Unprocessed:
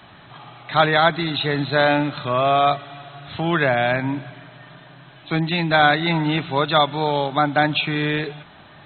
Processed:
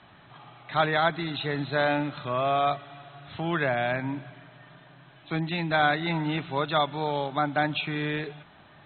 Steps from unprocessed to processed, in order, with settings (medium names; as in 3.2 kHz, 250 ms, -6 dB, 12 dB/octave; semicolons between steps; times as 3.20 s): low-pass 4 kHz; trim -7.5 dB